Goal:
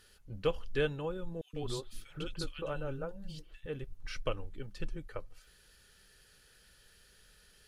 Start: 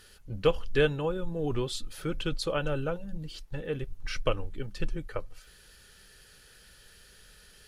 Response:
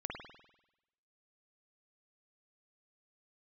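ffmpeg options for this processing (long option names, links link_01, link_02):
-filter_complex "[0:a]asettb=1/sr,asplit=3[link_01][link_02][link_03];[link_01]atrim=end=1.414[link_04];[link_02]atrim=start=1.41:end=3.66,asetpts=PTS-STARTPTS,afade=type=in:duration=0.004:curve=qsin,afade=type=out:start_time=2.246:duration=0.004:curve=qsin,acrossover=split=270|2000[link_05][link_06][link_07];[link_05]adelay=120[link_08];[link_06]adelay=150[link_09];[link_08][link_09][link_07]amix=inputs=3:normalize=0,atrim=end_sample=99225[link_10];[link_03]atrim=start=3.656[link_11];[link_04][link_10]acrossfade=duration=0.004:curve1=hsin:curve2=qsin[link_12];[link_12][link_11]acrossfade=duration=0.004:curve1=qsin:curve2=hsin,volume=-7dB"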